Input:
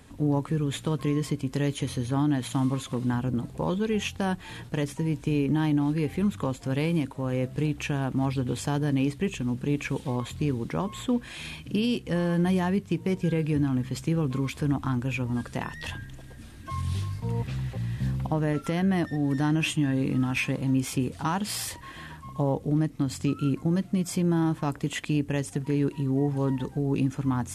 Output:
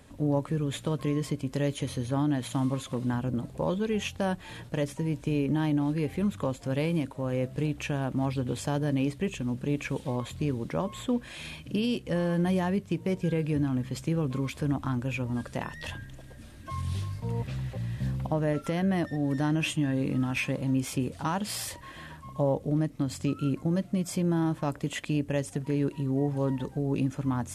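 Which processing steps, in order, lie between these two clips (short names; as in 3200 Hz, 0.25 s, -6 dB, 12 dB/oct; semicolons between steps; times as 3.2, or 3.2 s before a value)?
bell 580 Hz +8 dB 0.26 oct; gain -2.5 dB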